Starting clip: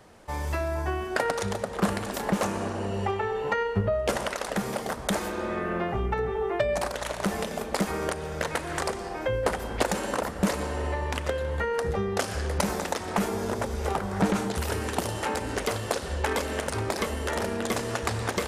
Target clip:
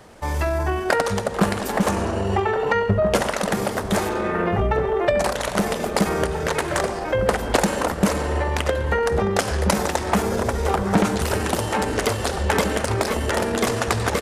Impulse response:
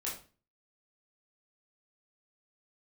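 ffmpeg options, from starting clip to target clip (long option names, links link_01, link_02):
-filter_complex "[0:a]atempo=1.3,asplit=2[link_01][link_02];[link_02]adelay=1633,volume=-8dB,highshelf=frequency=4000:gain=-36.7[link_03];[link_01][link_03]amix=inputs=2:normalize=0,acontrast=77"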